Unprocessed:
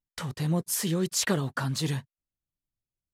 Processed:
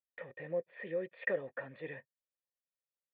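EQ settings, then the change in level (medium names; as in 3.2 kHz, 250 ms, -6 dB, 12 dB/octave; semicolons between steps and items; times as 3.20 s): cascade formant filter e; bass shelf 130 Hz -10 dB; bass shelf 260 Hz -9.5 dB; +6.0 dB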